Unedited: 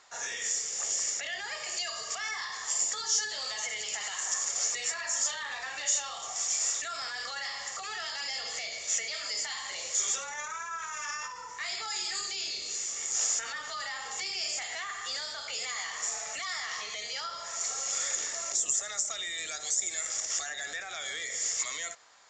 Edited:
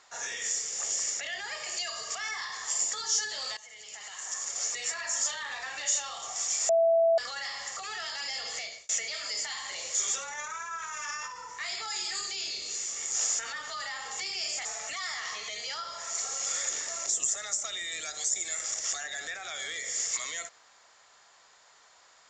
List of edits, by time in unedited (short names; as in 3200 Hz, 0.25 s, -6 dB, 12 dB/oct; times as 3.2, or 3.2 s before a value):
3.57–4.98 fade in, from -18.5 dB
6.69–7.18 bleep 663 Hz -19.5 dBFS
8.61–8.89 fade out
14.65–16.11 cut